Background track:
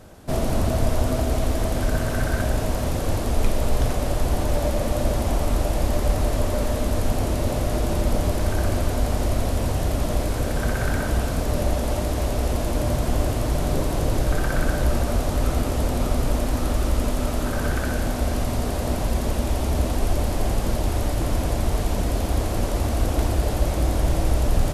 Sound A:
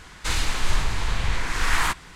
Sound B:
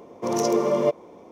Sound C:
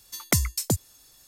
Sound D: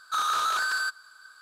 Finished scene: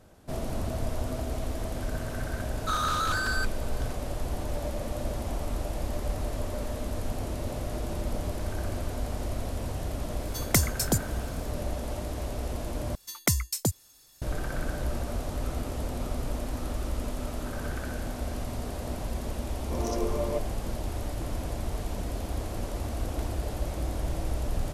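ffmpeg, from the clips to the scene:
-filter_complex "[3:a]asplit=2[a][b];[0:a]volume=-10dB,asplit=2[c][d];[c]atrim=end=12.954[e];[b]atrim=end=1.27,asetpts=PTS-STARTPTS,volume=-2.5dB[f];[d]atrim=start=14.216[g];[4:a]atrim=end=1.41,asetpts=PTS-STARTPTS,volume=-2.5dB,afade=t=in:d=0.004:c=hsin,afade=t=out:st=1.406:d=0.004:c=hsin,adelay=2550[h];[a]atrim=end=1.27,asetpts=PTS-STARTPTS,volume=-1dB,afade=t=in:d=0.004:c=hsin,afade=t=out:st=1.266:d=0.004:c=hsin,adelay=10220[i];[2:a]atrim=end=1.31,asetpts=PTS-STARTPTS,volume=-10dB,afade=t=in:d=0.004:c=hsin,afade=t=out:st=1.306:d=0.004:c=hsin,adelay=19480[j];[e][f]acrossfade=d=0.004:c1=hsin:c2=hsin[k];[k][g]acrossfade=d=0.004:c1=hsin:c2=hsin[l];[l][h][i][j]amix=inputs=4:normalize=0"

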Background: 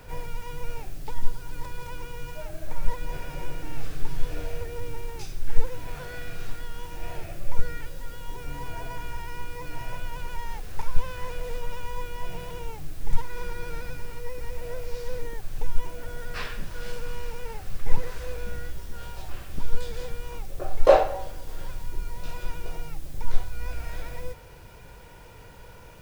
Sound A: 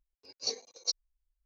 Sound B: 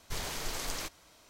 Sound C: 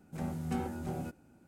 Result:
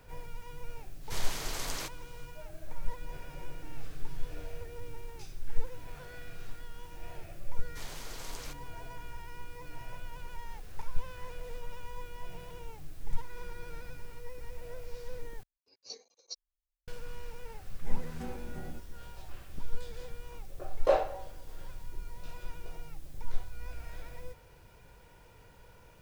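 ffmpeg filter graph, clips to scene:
-filter_complex "[2:a]asplit=2[a][b];[0:a]volume=-9.5dB,asplit=2[c][d];[c]atrim=end=15.434[e];[1:a]atrim=end=1.45,asetpts=PTS-STARTPTS,volume=-12dB[f];[d]atrim=start=16.876[g];[a]atrim=end=1.29,asetpts=PTS-STARTPTS,volume=-0.5dB,afade=t=in:d=0.05,afade=t=out:st=1.24:d=0.05,adelay=1000[h];[b]atrim=end=1.29,asetpts=PTS-STARTPTS,volume=-8dB,afade=t=in:d=0.004:c=hsin,afade=t=out:st=1.286:d=0.004:c=hsin,adelay=7650[i];[3:a]atrim=end=1.47,asetpts=PTS-STARTPTS,volume=-8dB,afade=t=in:d=0.004:c=hsin,afade=t=out:st=1.466:d=0.004:c=hsin,adelay=17690[j];[e][f]acrossfade=d=0.004:c1=hsin:c2=hsin[k];[k][g]acrossfade=d=0.004:c1=hsin:c2=hsin[l];[l][h][i][j]amix=inputs=4:normalize=0"

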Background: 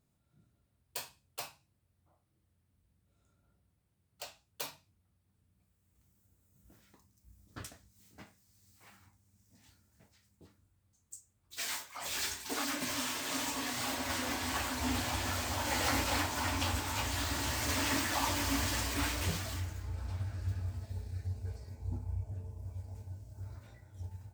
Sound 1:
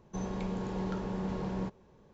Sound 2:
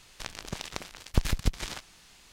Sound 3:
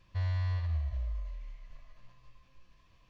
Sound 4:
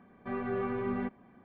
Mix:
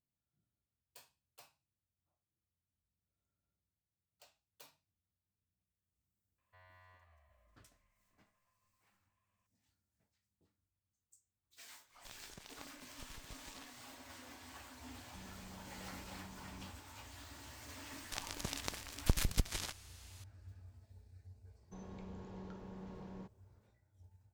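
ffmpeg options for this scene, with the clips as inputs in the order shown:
-filter_complex "[2:a]asplit=2[a][b];[1:a]asplit=2[c][d];[0:a]volume=-18.5dB[e];[3:a]acrossover=split=510 2700:gain=0.0631 1 0.112[f][g][h];[f][g][h]amix=inputs=3:normalize=0[i];[a]acompressor=threshold=-32dB:ratio=6:attack=3.2:release=140:knee=1:detection=peak[j];[c]equalizer=f=600:w=0.69:g=-10[k];[b]highshelf=f=7k:g=10[l];[i]atrim=end=3.09,asetpts=PTS-STARTPTS,volume=-14.5dB,afade=t=in:d=0.004:c=hsin,afade=t=out:st=3.086:d=0.004:c=hsin,adelay=6380[m];[j]atrim=end=2.32,asetpts=PTS-STARTPTS,volume=-16dB,afade=t=in:d=0.1,afade=t=out:st=2.22:d=0.1,adelay=11850[n];[k]atrim=end=2.13,asetpts=PTS-STARTPTS,volume=-17.5dB,afade=t=in:d=0.004:c=hsin,afade=t=out:st=2.126:d=0.004:c=hsin,adelay=15010[o];[l]atrim=end=2.32,asetpts=PTS-STARTPTS,volume=-6.5dB,afade=t=in:d=0.004:c=hsin,afade=t=out:st=2.316:d=0.004:c=hsin,adelay=17920[p];[d]atrim=end=2.13,asetpts=PTS-STARTPTS,volume=-15dB,afade=t=in:d=0.004:c=hsin,afade=t=out:st=2.126:d=0.004:c=hsin,adelay=21580[q];[e][m][n][o][p][q]amix=inputs=6:normalize=0"

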